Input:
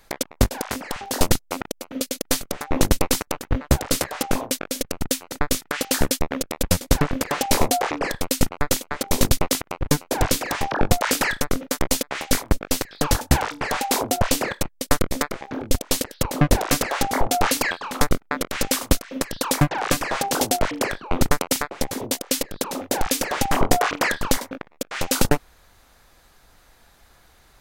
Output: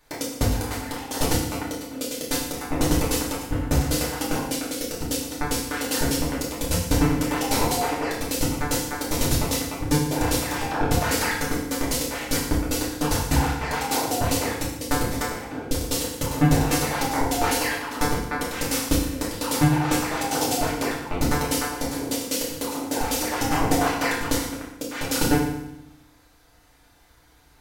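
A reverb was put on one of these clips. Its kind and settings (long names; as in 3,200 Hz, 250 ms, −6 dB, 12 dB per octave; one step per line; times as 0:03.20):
feedback delay network reverb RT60 0.85 s, low-frequency decay 1.35×, high-frequency decay 0.95×, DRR −6 dB
level −9 dB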